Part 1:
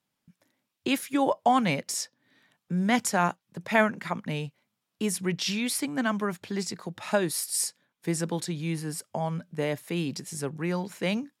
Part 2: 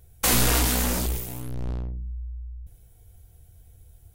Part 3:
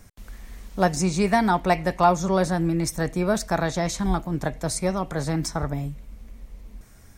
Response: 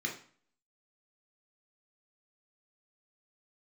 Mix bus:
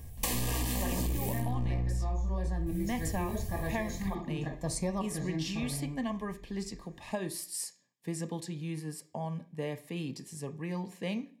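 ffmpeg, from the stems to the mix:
-filter_complex "[0:a]volume=-7.5dB,asplit=3[a][b][c];[b]volume=-11.5dB[d];[1:a]acontrast=74,alimiter=limit=-12dB:level=0:latency=1,dynaudnorm=f=440:g=5:m=11dB,volume=-1.5dB,asplit=2[e][f];[f]volume=-15.5dB[g];[2:a]volume=-4.5dB,asplit=2[h][i];[i]volume=-11dB[j];[c]apad=whole_len=316388[k];[h][k]sidechaincompress=threshold=-52dB:ratio=8:attack=16:release=295[l];[e][l]amix=inputs=2:normalize=0,acompressor=threshold=-21dB:ratio=6,volume=0dB[m];[3:a]atrim=start_sample=2205[n];[d][g][j]amix=inputs=3:normalize=0[o];[o][n]afir=irnorm=-1:irlink=0[p];[a][m][p]amix=inputs=3:normalize=0,asuperstop=centerf=1400:order=20:qfactor=3.6,acompressor=threshold=-28dB:ratio=12"

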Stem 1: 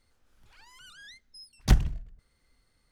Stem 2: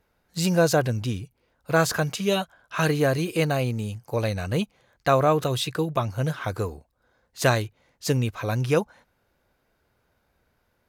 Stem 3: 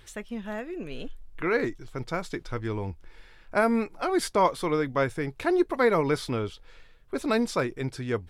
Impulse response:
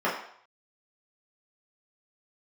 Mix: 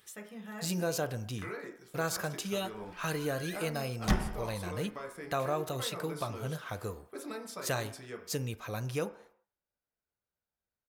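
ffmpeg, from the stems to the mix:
-filter_complex "[0:a]adelay=2400,volume=-2dB,asplit=2[a][b];[b]volume=-7dB[c];[1:a]agate=range=-17dB:threshold=-53dB:ratio=16:detection=peak,highshelf=f=5.5k:g=8.5,adelay=250,volume=-10.5dB,asplit=2[d][e];[e]volume=-23.5dB[f];[2:a]highpass=100,aemphasis=mode=production:type=75fm,acompressor=threshold=-30dB:ratio=6,volume=-13.5dB,asplit=2[g][h];[h]volume=-11dB[i];[3:a]atrim=start_sample=2205[j];[c][f][i]amix=inputs=3:normalize=0[k];[k][j]afir=irnorm=-1:irlink=0[l];[a][d][g][l]amix=inputs=4:normalize=0,acompressor=threshold=-34dB:ratio=1.5"

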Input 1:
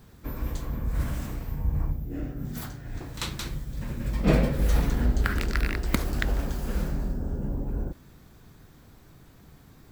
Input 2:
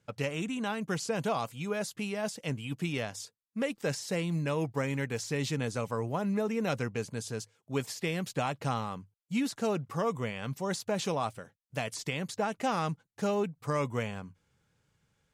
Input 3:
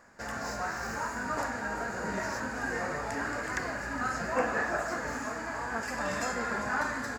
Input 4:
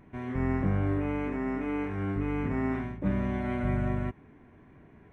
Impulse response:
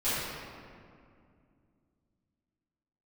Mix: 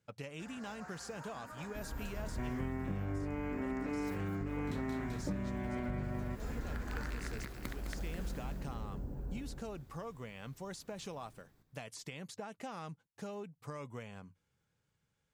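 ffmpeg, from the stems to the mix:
-filter_complex "[0:a]adelay=1500,volume=-13dB,asplit=2[a][b];[b]volume=-4.5dB[c];[1:a]acompressor=threshold=-33dB:ratio=6,volume=-8dB[d];[2:a]adelay=200,volume=-17.5dB[e];[3:a]adelay=2250,volume=2dB[f];[a][d]amix=inputs=2:normalize=0,alimiter=level_in=5dB:limit=-24dB:level=0:latency=1:release=393,volume=-5dB,volume=0dB[g];[c]aecho=0:1:209|418|627|836|1045|1254:1|0.42|0.176|0.0741|0.0311|0.0131[h];[e][f][g][h]amix=inputs=4:normalize=0,acompressor=threshold=-34dB:ratio=12"

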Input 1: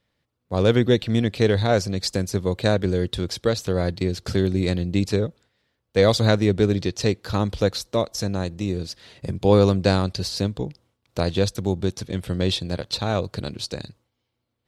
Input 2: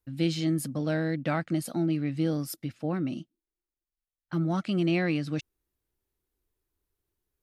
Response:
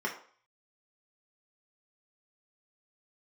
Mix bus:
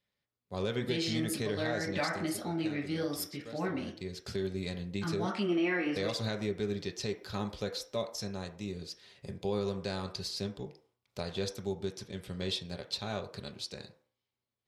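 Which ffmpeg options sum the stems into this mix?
-filter_complex "[0:a]volume=3.5dB,afade=t=out:st=1.98:d=0.35:silence=0.237137,afade=t=in:st=3.76:d=0.48:silence=0.237137,asplit=3[a][b][c];[b]volume=-11dB[d];[1:a]equalizer=f=140:w=1.2:g=-8,adelay=700,volume=2dB,asplit=2[e][f];[f]volume=-5.5dB[g];[c]apad=whole_len=358162[h];[e][h]sidechaingate=range=-33dB:threshold=-57dB:ratio=16:detection=peak[i];[2:a]atrim=start_sample=2205[j];[d][g]amix=inputs=2:normalize=0[k];[k][j]afir=irnorm=-1:irlink=0[l];[a][i][l]amix=inputs=3:normalize=0,lowshelf=f=260:g=-9.5,alimiter=limit=-22dB:level=0:latency=1:release=161"

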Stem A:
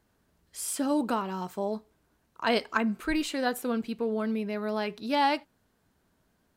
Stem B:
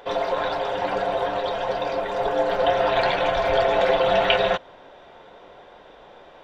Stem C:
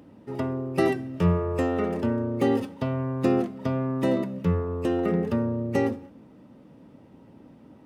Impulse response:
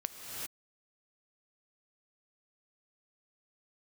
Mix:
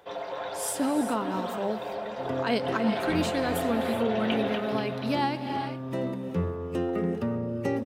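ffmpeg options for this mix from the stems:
-filter_complex "[0:a]tremolo=f=5.9:d=0.44,volume=0dB,asplit=3[a][b][c];[b]volume=-6dB[d];[1:a]volume=-11dB,asplit=2[e][f];[f]volume=-6.5dB[g];[2:a]adelay=1900,volume=-6.5dB,asplit=2[h][i];[i]volume=-7.5dB[j];[c]apad=whole_len=429984[k];[h][k]sidechaincompress=threshold=-37dB:ratio=8:attack=7.1:release=880[l];[3:a]atrim=start_sample=2205[m];[d][j]amix=inputs=2:normalize=0[n];[n][m]afir=irnorm=-1:irlink=0[o];[g]aecho=0:1:241|482|723|964|1205|1446|1687|1928|2169:1|0.59|0.348|0.205|0.121|0.0715|0.0422|0.0249|0.0147[p];[a][e][l][o][p]amix=inputs=5:normalize=0,highpass=74,acrossover=split=330[q][r];[r]acompressor=threshold=-26dB:ratio=4[s];[q][s]amix=inputs=2:normalize=0"

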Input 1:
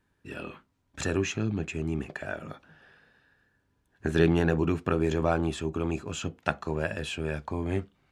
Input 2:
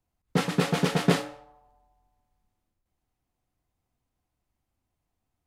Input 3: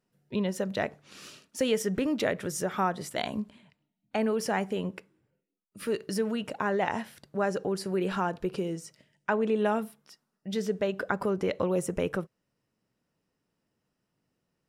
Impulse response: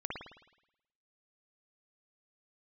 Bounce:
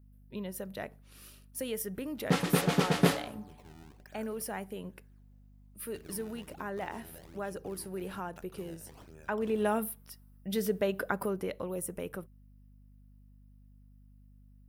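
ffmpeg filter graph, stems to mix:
-filter_complex "[0:a]acompressor=threshold=-30dB:ratio=4,acrusher=samples=23:mix=1:aa=0.000001:lfo=1:lforange=36.8:lforate=1.2,adelay=1900,volume=-19dB[a];[1:a]adelay=1950,volume=-2.5dB[b];[2:a]aexciter=amount=6.4:drive=6.8:freq=9.6k,volume=-1dB,afade=t=in:st=9.12:d=0.75:silence=0.354813,afade=t=out:st=10.91:d=0.71:silence=0.375837[c];[a][b][c]amix=inputs=3:normalize=0,aeval=exprs='val(0)+0.00158*(sin(2*PI*50*n/s)+sin(2*PI*2*50*n/s)/2+sin(2*PI*3*50*n/s)/3+sin(2*PI*4*50*n/s)/4+sin(2*PI*5*50*n/s)/5)':c=same"

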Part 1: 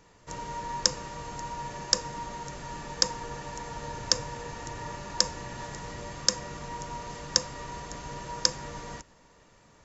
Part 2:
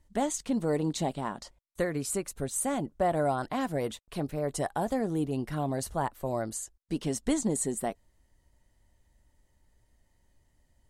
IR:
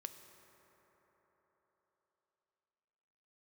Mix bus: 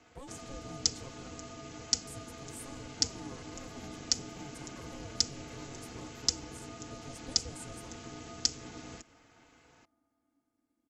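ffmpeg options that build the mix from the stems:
-filter_complex "[0:a]equalizer=f=2.4k:w=1.5:g=6,volume=-3.5dB,asplit=2[a][b];[b]volume=-17.5dB[c];[1:a]volume=-17.5dB,asplit=3[d][e][f];[d]atrim=end=1.42,asetpts=PTS-STARTPTS,afade=t=out:st=1.416:d=0.004:c=hsin[g];[e]atrim=start=1.42:end=2.07,asetpts=PTS-STARTPTS,volume=0[h];[f]atrim=start=2.07,asetpts=PTS-STARTPTS,afade=t=in:d=0.004:c=hsin[i];[g][h][i]concat=n=3:v=0:a=1,asplit=2[j][k];[k]volume=-3.5dB[l];[2:a]atrim=start_sample=2205[m];[c][l]amix=inputs=2:normalize=0[n];[n][m]afir=irnorm=-1:irlink=0[o];[a][j][o]amix=inputs=3:normalize=0,aecho=1:1:5:0.64,aeval=exprs='val(0)*sin(2*PI*280*n/s)':c=same,acrossover=split=440|3000[p][q][r];[q]acompressor=threshold=-52dB:ratio=4[s];[p][s][r]amix=inputs=3:normalize=0"

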